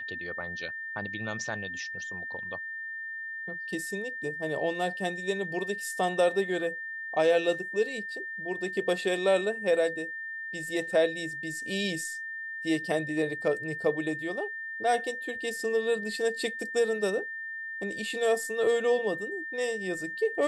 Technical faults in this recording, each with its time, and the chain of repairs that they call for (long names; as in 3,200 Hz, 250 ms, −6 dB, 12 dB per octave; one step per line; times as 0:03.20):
whistle 1,800 Hz −35 dBFS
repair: notch filter 1,800 Hz, Q 30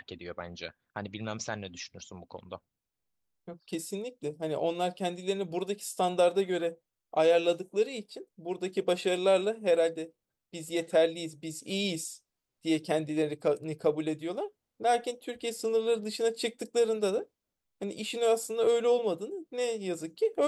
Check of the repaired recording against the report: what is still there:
none of them is left